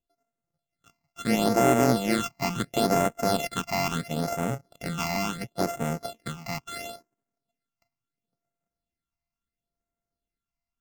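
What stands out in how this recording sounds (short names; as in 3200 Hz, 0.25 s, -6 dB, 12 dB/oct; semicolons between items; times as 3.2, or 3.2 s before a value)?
a buzz of ramps at a fixed pitch in blocks of 64 samples; phasing stages 8, 0.73 Hz, lowest notch 450–4400 Hz; AAC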